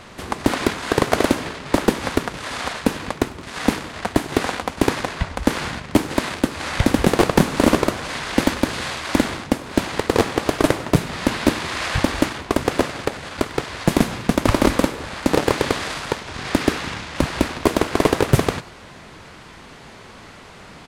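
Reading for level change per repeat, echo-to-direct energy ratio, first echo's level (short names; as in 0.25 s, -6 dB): -7.0 dB, -21.0 dB, -22.0 dB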